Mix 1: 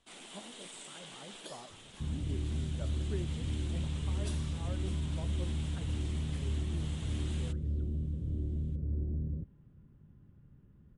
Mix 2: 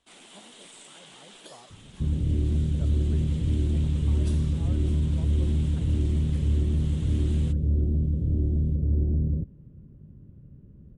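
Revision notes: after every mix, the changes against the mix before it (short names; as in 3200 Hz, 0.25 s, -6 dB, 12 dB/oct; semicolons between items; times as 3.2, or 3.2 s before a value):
second sound +10.5 dB; reverb: off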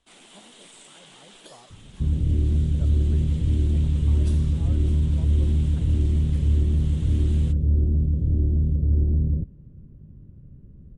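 master: add low shelf 65 Hz +9 dB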